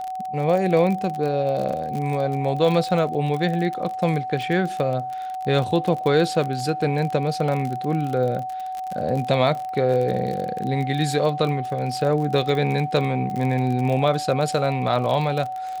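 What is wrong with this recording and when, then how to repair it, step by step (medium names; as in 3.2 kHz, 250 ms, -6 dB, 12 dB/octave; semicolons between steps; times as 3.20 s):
crackle 35 per s -26 dBFS
whine 750 Hz -27 dBFS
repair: de-click; band-stop 750 Hz, Q 30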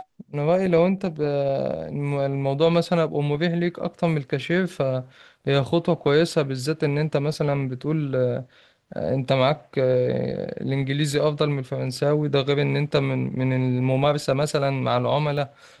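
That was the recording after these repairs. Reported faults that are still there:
nothing left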